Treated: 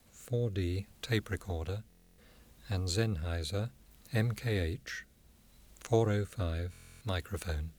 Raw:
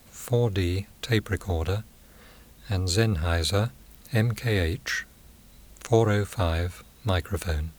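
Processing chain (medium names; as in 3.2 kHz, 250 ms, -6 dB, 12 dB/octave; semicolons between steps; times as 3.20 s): rotary cabinet horn 0.65 Hz; buffer glitch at 1.88/6.71 s, samples 1024, times 12; trim -7 dB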